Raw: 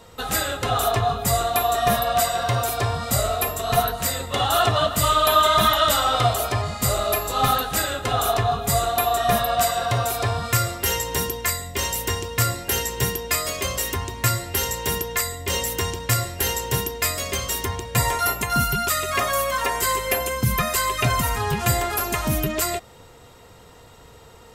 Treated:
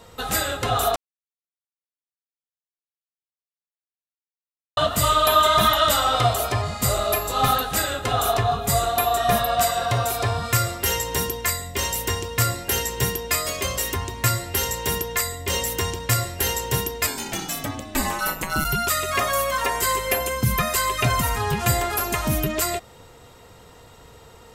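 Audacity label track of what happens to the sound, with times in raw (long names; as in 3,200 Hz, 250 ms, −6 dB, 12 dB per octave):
0.960000	4.770000	silence
17.060000	18.640000	ring modulation 370 Hz → 73 Hz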